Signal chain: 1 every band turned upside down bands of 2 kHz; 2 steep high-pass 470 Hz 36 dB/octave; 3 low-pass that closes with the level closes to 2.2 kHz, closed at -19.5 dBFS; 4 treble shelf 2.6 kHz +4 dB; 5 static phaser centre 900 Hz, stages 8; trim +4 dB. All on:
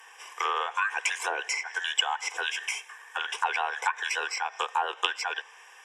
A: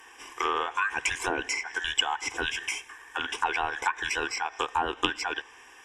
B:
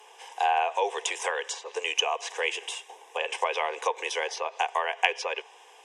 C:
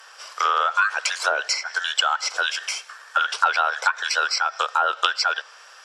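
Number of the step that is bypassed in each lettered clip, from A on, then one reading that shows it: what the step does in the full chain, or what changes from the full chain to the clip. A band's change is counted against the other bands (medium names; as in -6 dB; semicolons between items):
2, 500 Hz band +4.0 dB; 1, 500 Hz band +10.0 dB; 5, crest factor change -3.0 dB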